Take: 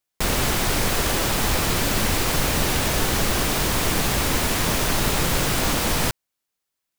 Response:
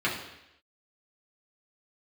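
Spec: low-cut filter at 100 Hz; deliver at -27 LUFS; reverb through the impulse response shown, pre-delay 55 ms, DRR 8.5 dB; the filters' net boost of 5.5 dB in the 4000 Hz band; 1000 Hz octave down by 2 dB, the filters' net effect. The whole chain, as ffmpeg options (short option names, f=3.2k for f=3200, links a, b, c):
-filter_complex "[0:a]highpass=100,equalizer=f=1k:t=o:g=-3,equalizer=f=4k:t=o:g=7,asplit=2[a][b];[1:a]atrim=start_sample=2205,adelay=55[c];[b][c]afir=irnorm=-1:irlink=0,volume=-20.5dB[d];[a][d]amix=inputs=2:normalize=0,volume=-7.5dB"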